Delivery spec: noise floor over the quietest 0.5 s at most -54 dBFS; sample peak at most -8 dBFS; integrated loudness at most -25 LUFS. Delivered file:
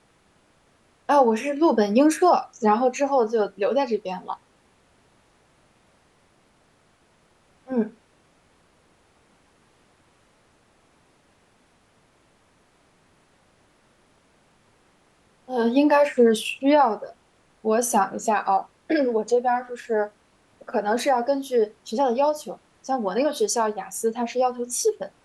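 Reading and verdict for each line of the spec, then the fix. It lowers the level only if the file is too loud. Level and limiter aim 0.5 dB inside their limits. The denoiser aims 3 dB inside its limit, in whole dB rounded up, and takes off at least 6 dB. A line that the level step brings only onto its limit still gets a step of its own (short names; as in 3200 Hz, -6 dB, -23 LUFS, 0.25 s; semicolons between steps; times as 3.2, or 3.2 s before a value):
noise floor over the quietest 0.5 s -61 dBFS: OK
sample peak -6.5 dBFS: fail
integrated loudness -22.5 LUFS: fail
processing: gain -3 dB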